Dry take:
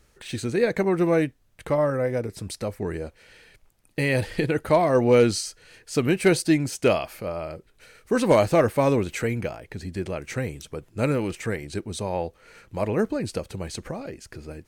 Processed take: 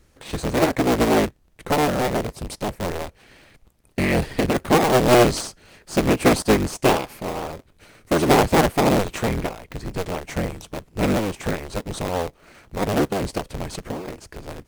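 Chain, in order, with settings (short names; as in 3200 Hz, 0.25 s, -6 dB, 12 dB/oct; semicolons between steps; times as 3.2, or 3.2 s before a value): cycle switcher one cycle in 3, inverted; in parallel at -5.5 dB: decimation with a swept rate 24×, swing 60% 4 Hz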